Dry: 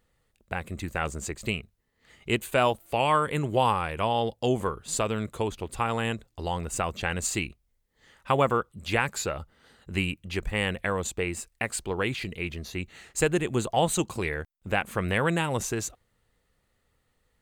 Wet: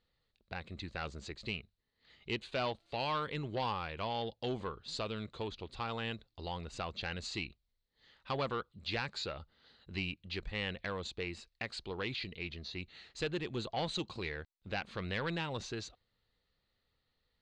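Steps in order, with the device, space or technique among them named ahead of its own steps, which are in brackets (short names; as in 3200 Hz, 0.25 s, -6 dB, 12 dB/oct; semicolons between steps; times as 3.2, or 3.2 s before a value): overdriven synthesiser ladder filter (soft clip -18.5 dBFS, distortion -14 dB; ladder low-pass 4600 Hz, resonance 65%); gain +1 dB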